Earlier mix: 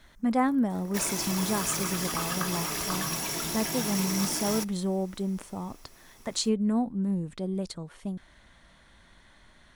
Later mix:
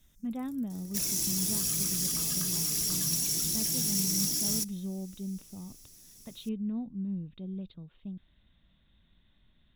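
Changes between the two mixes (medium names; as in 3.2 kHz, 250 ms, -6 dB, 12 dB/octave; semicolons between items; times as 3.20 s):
speech: add rippled Chebyshev low-pass 3.8 kHz, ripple 6 dB; master: add FFT filter 190 Hz 0 dB, 980 Hz -21 dB, 2.5 kHz -10 dB, 6.1 kHz +5 dB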